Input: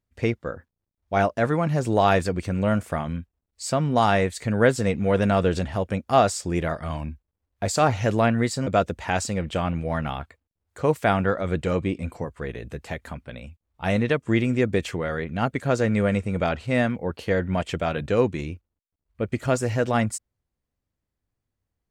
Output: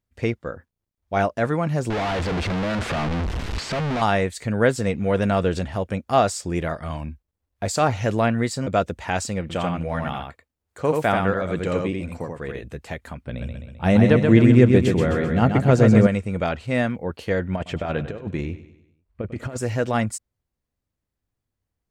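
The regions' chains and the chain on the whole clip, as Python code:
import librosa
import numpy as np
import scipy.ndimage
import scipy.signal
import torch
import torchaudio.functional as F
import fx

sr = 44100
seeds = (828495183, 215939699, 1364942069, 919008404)

y = fx.chain(x, sr, fx.clip_1bit(),
    fx.lowpass(hz=3400.0, slope=12), at=(1.9, 4.02))
y = fx.chain(y, sr, fx.low_shelf(hz=73.0, db=-8.0),
    fx.echo_single(ms=85, db=-3.5), at=(9.41, 12.63))
y = fx.chain(y, sr, fx.low_shelf(hz=450.0, db=10.0),
    fx.hum_notches(base_hz=50, count=3),
    fx.echo_feedback(ms=130, feedback_pct=53, wet_db=-5.0), at=(13.25, 16.07))
y = fx.chain(y, sr, fx.high_shelf(hz=3600.0, db=-11.5),
    fx.over_compress(threshold_db=-26.0, ratio=-0.5),
    fx.echo_feedback(ms=98, feedback_pct=48, wet_db=-14), at=(17.56, 19.58))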